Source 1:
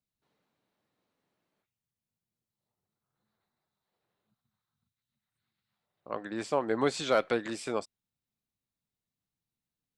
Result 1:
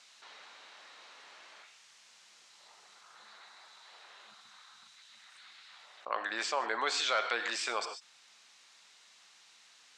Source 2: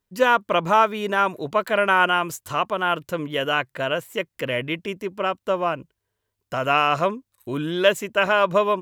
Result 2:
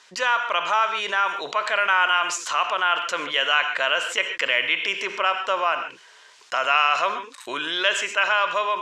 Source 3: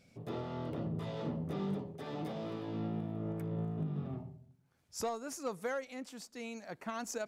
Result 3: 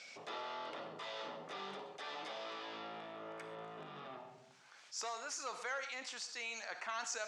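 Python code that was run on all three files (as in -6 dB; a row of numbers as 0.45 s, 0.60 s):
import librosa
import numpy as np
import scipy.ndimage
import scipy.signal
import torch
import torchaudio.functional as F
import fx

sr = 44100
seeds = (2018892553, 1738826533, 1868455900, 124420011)

y = scipy.signal.sosfilt(scipy.signal.butter(4, 7000.0, 'lowpass', fs=sr, output='sos'), x)
y = fx.rev_gated(y, sr, seeds[0], gate_ms=160, shape='flat', drr_db=12.0)
y = fx.rider(y, sr, range_db=10, speed_s=2.0)
y = scipy.signal.sosfilt(scipy.signal.butter(2, 1100.0, 'highpass', fs=sr, output='sos'), y)
y = fx.env_flatten(y, sr, amount_pct=50)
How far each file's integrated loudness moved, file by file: -2.0 LU, +0.5 LU, -4.5 LU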